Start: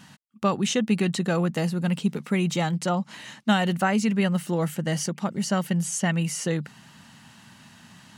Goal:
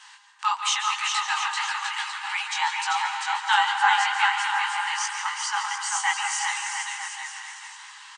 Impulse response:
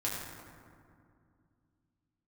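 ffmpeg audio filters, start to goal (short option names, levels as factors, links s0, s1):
-filter_complex "[0:a]bandreject=f=1300:w=23,afreqshift=77,aecho=1:1:390|702|951.6|1151|1311:0.631|0.398|0.251|0.158|0.1,flanger=delay=15:depth=7.4:speed=2.9,asplit=2[s0][s1];[1:a]atrim=start_sample=2205,adelay=140[s2];[s1][s2]afir=irnorm=-1:irlink=0,volume=0.316[s3];[s0][s3]amix=inputs=2:normalize=0,afftfilt=real='re*between(b*sr/4096,780,9400)':imag='im*between(b*sr/4096,780,9400)':win_size=4096:overlap=0.75,adynamicequalizer=threshold=0.00316:dfrequency=4400:dqfactor=0.7:tfrequency=4400:tqfactor=0.7:attack=5:release=100:ratio=0.375:range=2.5:mode=cutabove:tftype=highshelf,volume=2.51"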